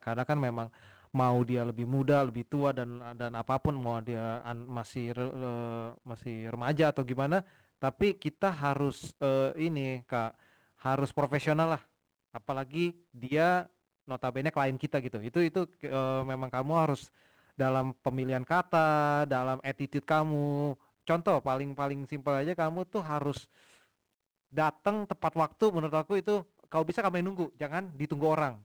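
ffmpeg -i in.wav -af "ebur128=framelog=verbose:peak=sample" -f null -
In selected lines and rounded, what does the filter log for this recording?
Integrated loudness:
  I:         -31.4 LUFS
  Threshold: -41.8 LUFS
Loudness range:
  LRA:         4.3 LU
  Threshold: -51.9 LUFS
  LRA low:   -34.2 LUFS
  LRA high:  -29.9 LUFS
Sample peak:
  Peak:      -15.8 dBFS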